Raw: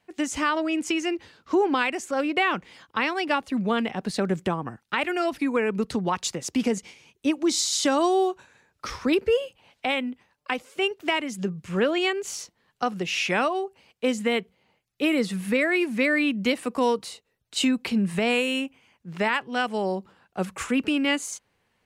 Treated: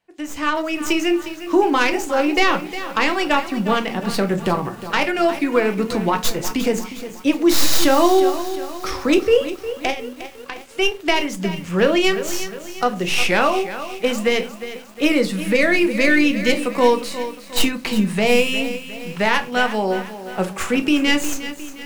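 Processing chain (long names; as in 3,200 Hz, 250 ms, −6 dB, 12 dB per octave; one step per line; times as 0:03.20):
stylus tracing distortion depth 0.11 ms
automatic gain control gain up to 14 dB
parametric band 180 Hz −2.5 dB 1.8 octaves
0:09.90–0:10.69: downward compressor 4 to 1, threshold −26 dBFS, peak gain reduction 13.5 dB
rectangular room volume 130 cubic metres, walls furnished, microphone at 0.7 metres
feedback echo at a low word length 357 ms, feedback 55%, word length 5 bits, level −12 dB
level −5.5 dB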